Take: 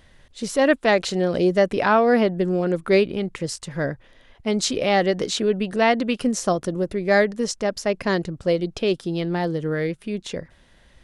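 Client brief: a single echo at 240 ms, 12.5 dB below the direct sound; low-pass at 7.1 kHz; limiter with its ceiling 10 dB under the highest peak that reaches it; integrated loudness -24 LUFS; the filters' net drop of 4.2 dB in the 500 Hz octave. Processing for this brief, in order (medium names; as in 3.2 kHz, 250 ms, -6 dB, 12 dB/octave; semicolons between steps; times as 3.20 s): low-pass 7.1 kHz; peaking EQ 500 Hz -5.5 dB; peak limiter -17.5 dBFS; delay 240 ms -12.5 dB; trim +3.5 dB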